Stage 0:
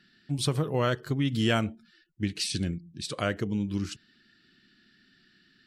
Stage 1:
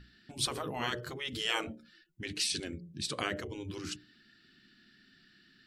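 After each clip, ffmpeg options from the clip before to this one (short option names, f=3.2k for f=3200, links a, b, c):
-af "aeval=exprs='val(0)+0.00316*(sin(2*PI*60*n/s)+sin(2*PI*2*60*n/s)/2+sin(2*PI*3*60*n/s)/3+sin(2*PI*4*60*n/s)/4+sin(2*PI*5*60*n/s)/5)':c=same,bandreject=f=60:t=h:w=6,bandreject=f=120:t=h:w=6,bandreject=f=180:t=h:w=6,bandreject=f=240:t=h:w=6,bandreject=f=300:t=h:w=6,bandreject=f=360:t=h:w=6,bandreject=f=420:t=h:w=6,bandreject=f=480:t=h:w=6,bandreject=f=540:t=h:w=6,bandreject=f=600:t=h:w=6,afftfilt=real='re*lt(hypot(re,im),0.141)':imag='im*lt(hypot(re,im),0.141)':win_size=1024:overlap=0.75"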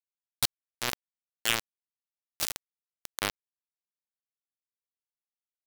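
-af "acrusher=bits=3:mix=0:aa=0.000001,volume=5.5dB"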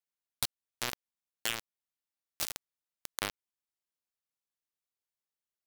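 -af "acompressor=threshold=-28dB:ratio=6"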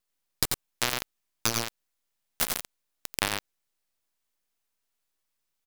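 -filter_complex "[0:a]aeval=exprs='abs(val(0))':c=same,aecho=1:1:88:0.473,asplit=2[a][b];[b]aeval=exprs='(mod(11.2*val(0)+1,2)-1)/11.2':c=same,volume=-6dB[c];[a][c]amix=inputs=2:normalize=0,volume=7.5dB"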